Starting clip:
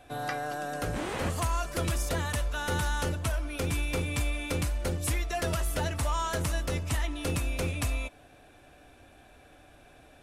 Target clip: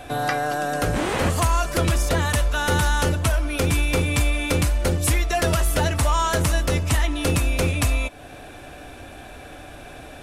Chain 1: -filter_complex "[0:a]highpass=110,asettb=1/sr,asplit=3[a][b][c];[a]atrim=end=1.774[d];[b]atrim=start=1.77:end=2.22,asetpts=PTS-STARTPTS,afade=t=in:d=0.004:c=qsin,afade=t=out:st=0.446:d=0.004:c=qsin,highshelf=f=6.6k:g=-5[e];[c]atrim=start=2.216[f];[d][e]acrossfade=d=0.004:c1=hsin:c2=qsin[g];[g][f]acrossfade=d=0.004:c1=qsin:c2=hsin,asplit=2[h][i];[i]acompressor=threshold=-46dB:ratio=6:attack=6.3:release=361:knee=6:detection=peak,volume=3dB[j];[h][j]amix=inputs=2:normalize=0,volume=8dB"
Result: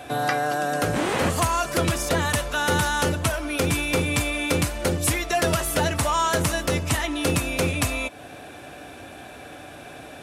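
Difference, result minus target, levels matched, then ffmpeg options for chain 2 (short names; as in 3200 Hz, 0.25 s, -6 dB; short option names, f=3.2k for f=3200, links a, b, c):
125 Hz band -3.5 dB
-filter_complex "[0:a]asettb=1/sr,asplit=3[a][b][c];[a]atrim=end=1.774[d];[b]atrim=start=1.77:end=2.22,asetpts=PTS-STARTPTS,afade=t=in:d=0.004:c=qsin,afade=t=out:st=0.446:d=0.004:c=qsin,highshelf=f=6.6k:g=-5[e];[c]atrim=start=2.216[f];[d][e]acrossfade=d=0.004:c1=hsin:c2=qsin[g];[g][f]acrossfade=d=0.004:c1=qsin:c2=hsin,asplit=2[h][i];[i]acompressor=threshold=-46dB:ratio=6:attack=6.3:release=361:knee=6:detection=peak,volume=3dB[j];[h][j]amix=inputs=2:normalize=0,volume=8dB"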